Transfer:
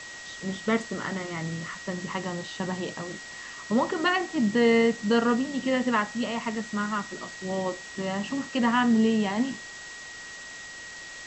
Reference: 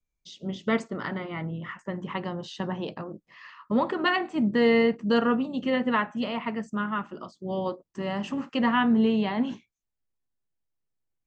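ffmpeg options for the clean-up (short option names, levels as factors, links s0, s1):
-af "bandreject=f=1900:w=30,afwtdn=0.0089,asetnsamples=n=441:p=0,asendcmd='10.02 volume volume -4dB',volume=1"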